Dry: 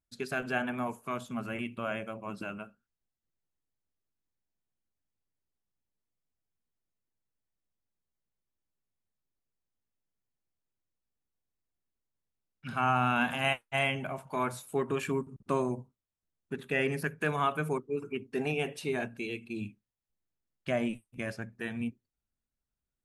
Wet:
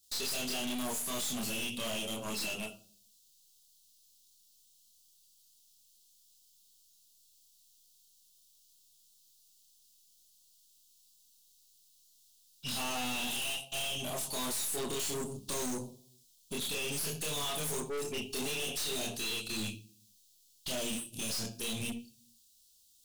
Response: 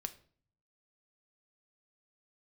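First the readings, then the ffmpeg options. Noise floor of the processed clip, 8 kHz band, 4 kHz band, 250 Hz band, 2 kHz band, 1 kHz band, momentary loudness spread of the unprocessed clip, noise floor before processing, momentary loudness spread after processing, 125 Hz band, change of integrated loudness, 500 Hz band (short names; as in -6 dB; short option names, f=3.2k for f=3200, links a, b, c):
-66 dBFS, +16.5 dB, +8.0 dB, -5.0 dB, -6.5 dB, -9.5 dB, 11 LU, under -85 dBFS, 5 LU, -7.5 dB, -2.0 dB, -6.5 dB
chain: -filter_complex "[0:a]aexciter=amount=9.7:drive=9.5:freq=2.2k,acompressor=threshold=-18dB:ratio=6,asuperstop=centerf=2000:order=4:qfactor=0.86,highshelf=f=4.9k:g=-6,acontrast=71,asplit=2[a][b];[b]lowshelf=f=150:g=-8.5[c];[1:a]atrim=start_sample=2205,asetrate=52920,aresample=44100,adelay=28[d];[c][d]afir=irnorm=-1:irlink=0,volume=6.5dB[e];[a][e]amix=inputs=2:normalize=0,aeval=exprs='(tanh(35.5*val(0)+0.4)-tanh(0.4))/35.5':c=same,volume=-3.5dB"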